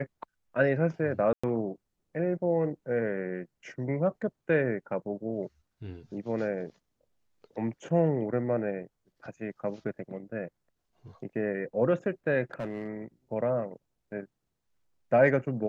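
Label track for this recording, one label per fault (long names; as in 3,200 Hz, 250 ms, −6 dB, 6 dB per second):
1.330000	1.440000	drop-out 105 ms
12.530000	12.880000	clipping −29.5 dBFS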